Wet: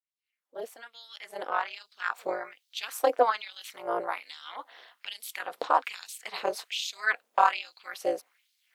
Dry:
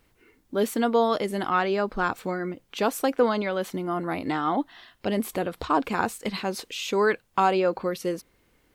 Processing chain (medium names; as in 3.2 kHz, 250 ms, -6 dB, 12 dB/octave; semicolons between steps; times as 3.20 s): fade-in on the opening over 2.66 s; AM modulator 230 Hz, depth 95%; LFO high-pass sine 1.2 Hz 490–4200 Hz